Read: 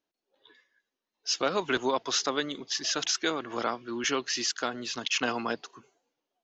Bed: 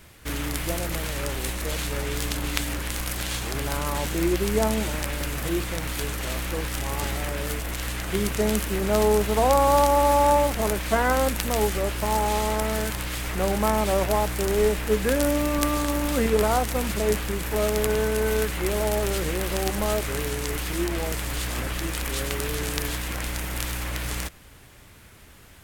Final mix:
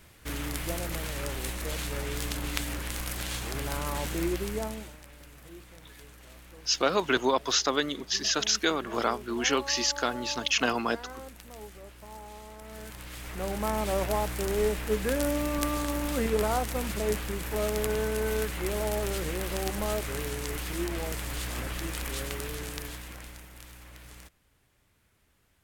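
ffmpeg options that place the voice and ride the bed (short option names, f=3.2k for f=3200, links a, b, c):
-filter_complex "[0:a]adelay=5400,volume=2.5dB[a];[1:a]volume=11dB,afade=t=out:st=4.15:d=0.82:silence=0.149624,afade=t=in:st=12.6:d=1.38:silence=0.158489,afade=t=out:st=22.06:d=1.44:silence=0.211349[b];[a][b]amix=inputs=2:normalize=0"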